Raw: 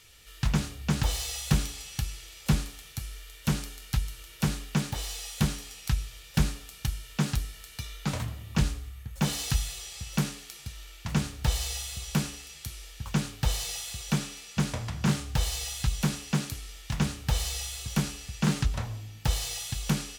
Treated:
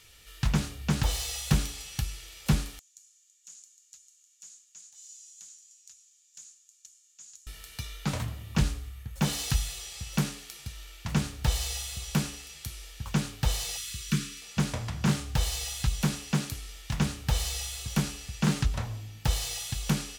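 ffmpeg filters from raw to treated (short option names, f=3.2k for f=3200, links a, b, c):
-filter_complex "[0:a]asettb=1/sr,asplit=3[a][b][c];[a]atrim=end=2.794[d];[b]atrim=start=2.79:end=7.47,asetpts=PTS-STARTPTS,afade=t=in:d=0.004:c=qsin,afade=t=out:st=4.676:d=0.004:c=qsin,bandpass=f=6.9k:t=q:w=10[e];[c]atrim=start=7.466[f];[d][e]acrossfade=d=0.004:c1=hsin:c2=qsin[g];[g][f]acrossfade=d=0.004:c1=qsin:c2=hsin,asettb=1/sr,asplit=3[h][i][j];[h]atrim=end=13.774[k];[i]atrim=start=13.77:end=14.42,asetpts=PTS-STARTPTS,afade=t=in:d=0.004:c=qsin,afade=t=out:st=0.646:d=0.004:c=qsin,asuperstop=centerf=690:order=4:qfactor=0.77[l];[j]atrim=start=14.416[m];[k][l]acrossfade=d=0.004:c1=hsin:c2=qsin[n];[n][m]acrossfade=d=0.004:c1=qsin:c2=hsin"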